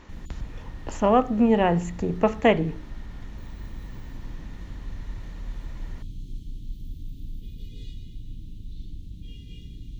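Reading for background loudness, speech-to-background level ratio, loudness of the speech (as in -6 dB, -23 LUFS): -42.0 LUFS, 19.5 dB, -22.5 LUFS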